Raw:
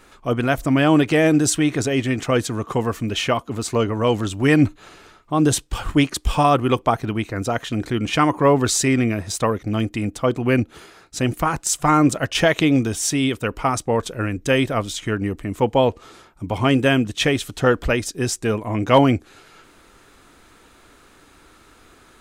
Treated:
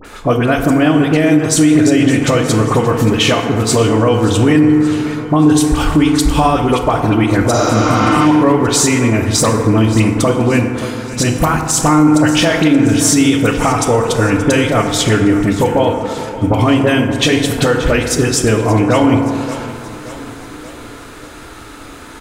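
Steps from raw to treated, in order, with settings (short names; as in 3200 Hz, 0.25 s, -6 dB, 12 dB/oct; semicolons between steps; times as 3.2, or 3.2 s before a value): compressor 6:1, threshold -25 dBFS, peak gain reduction 15.5 dB; dispersion highs, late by 48 ms, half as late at 1700 Hz; on a send: feedback echo 0.577 s, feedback 55%, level -16 dB; on the sum: FDN reverb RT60 2.3 s, low-frequency decay 0.85×, high-frequency decay 0.35×, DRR 3.5 dB; spectral repair 7.56–8.19, 270–7300 Hz both; maximiser +15.5 dB; gain -1 dB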